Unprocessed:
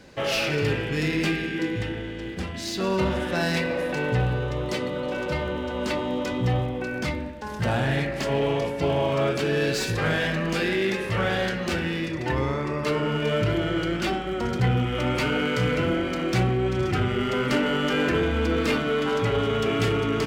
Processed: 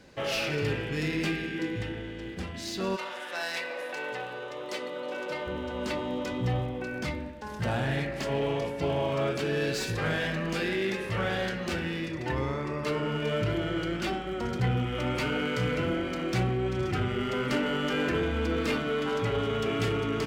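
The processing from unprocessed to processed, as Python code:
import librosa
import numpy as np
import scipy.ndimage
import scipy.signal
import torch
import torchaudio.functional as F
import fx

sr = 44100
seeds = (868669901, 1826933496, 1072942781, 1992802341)

y = fx.highpass(x, sr, hz=fx.line((2.95, 880.0), (5.46, 300.0)), slope=12, at=(2.95, 5.46), fade=0.02)
y = y * 10.0 ** (-5.0 / 20.0)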